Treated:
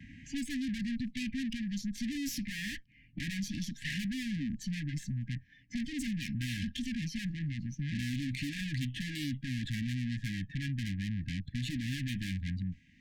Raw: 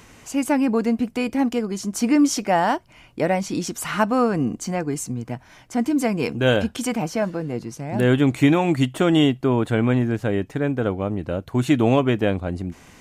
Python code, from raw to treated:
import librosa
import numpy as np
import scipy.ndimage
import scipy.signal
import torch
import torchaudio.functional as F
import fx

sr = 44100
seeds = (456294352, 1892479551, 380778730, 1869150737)

y = fx.tracing_dist(x, sr, depth_ms=0.037)
y = fx.noise_reduce_blind(y, sr, reduce_db=16)
y = fx.env_lowpass(y, sr, base_hz=1600.0, full_db=-14.0)
y = fx.tube_stage(y, sr, drive_db=34.0, bias=0.75)
y = fx.vibrato(y, sr, rate_hz=1.2, depth_cents=45.0)
y = fx.brickwall_bandstop(y, sr, low_hz=300.0, high_hz=1600.0)
y = fx.band_squash(y, sr, depth_pct=70)
y = y * librosa.db_to_amplitude(2.0)